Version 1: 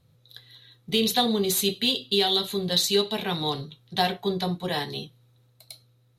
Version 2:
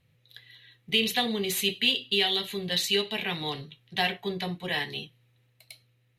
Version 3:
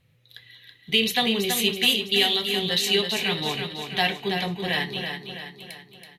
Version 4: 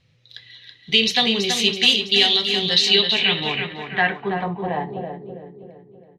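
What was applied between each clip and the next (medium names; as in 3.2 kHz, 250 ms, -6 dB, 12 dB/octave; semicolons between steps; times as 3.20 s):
high-order bell 2.3 kHz +11.5 dB 1 oct; trim -5.5 dB
feedback delay 328 ms, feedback 50%, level -6.5 dB; trim +3.5 dB
low-pass sweep 5.4 kHz -> 500 Hz, 2.70–5.37 s; trim +2 dB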